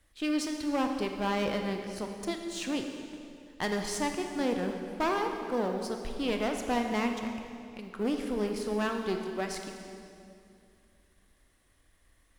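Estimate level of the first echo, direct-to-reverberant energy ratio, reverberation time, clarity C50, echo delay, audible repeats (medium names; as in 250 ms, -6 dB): no echo, 4.0 dB, 2.5 s, 5.0 dB, no echo, no echo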